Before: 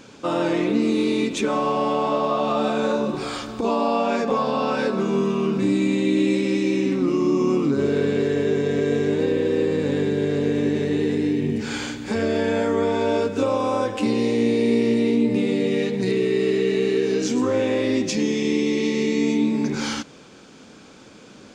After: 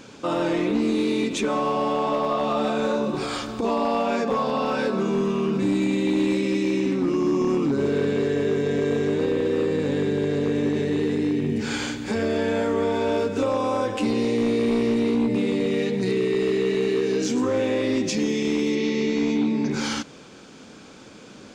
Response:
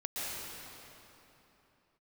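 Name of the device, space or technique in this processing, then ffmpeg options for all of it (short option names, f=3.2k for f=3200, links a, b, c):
clipper into limiter: -filter_complex "[0:a]asoftclip=type=hard:threshold=-15dB,alimiter=limit=-17.5dB:level=0:latency=1:release=53,asettb=1/sr,asplit=3[a][b][c];[a]atrim=end=18.754[d];[b]atrim=start=18.75:end=19.71,asetpts=PTS-STARTPTS,afade=t=in:d=0.004:c=qsin,afade=t=out:st=0.956:d=0.004:c=qsin,lowpass=f=6.3k:w=0.5412,lowpass=f=6.3k:w=1.3066[e];[c]atrim=start=19.706[f];[d][e]acrossfade=d=0.004:c1=hsin:c2=qsin[g];[g][f]acrossfade=d=0.004:c1=qsin:c2=hsin,volume=1dB"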